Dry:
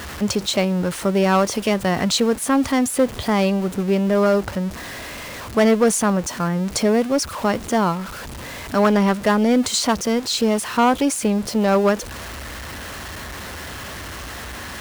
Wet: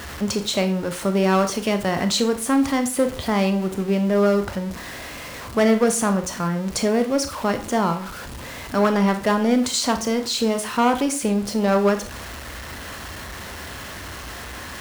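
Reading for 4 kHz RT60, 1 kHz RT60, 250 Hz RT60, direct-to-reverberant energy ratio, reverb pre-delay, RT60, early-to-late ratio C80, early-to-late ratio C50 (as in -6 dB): 0.35 s, 0.40 s, 0.35 s, 7.5 dB, 24 ms, 0.40 s, 16.5 dB, 12.5 dB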